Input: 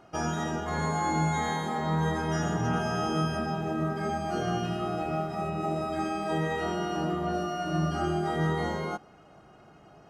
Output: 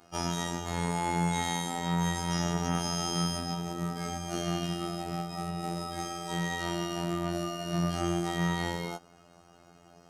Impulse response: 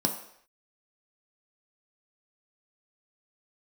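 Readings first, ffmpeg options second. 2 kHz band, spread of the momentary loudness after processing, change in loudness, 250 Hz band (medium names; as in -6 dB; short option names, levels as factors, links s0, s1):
-2.5 dB, 6 LU, -2.0 dB, -2.0 dB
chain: -af "afftfilt=real='hypot(re,im)*cos(PI*b)':imag='0':win_size=2048:overlap=0.75,aeval=exprs='0.168*(cos(1*acos(clip(val(0)/0.168,-1,1)))-cos(1*PI/2))+0.0266*(cos(2*acos(clip(val(0)/0.168,-1,1)))-cos(2*PI/2))+0.00422*(cos(3*acos(clip(val(0)/0.168,-1,1)))-cos(3*PI/2))+0.00133*(cos(5*acos(clip(val(0)/0.168,-1,1)))-cos(5*PI/2))+0.00422*(cos(8*acos(clip(val(0)/0.168,-1,1)))-cos(8*PI/2))':c=same,bass=f=250:g=1,treble=f=4000:g=13"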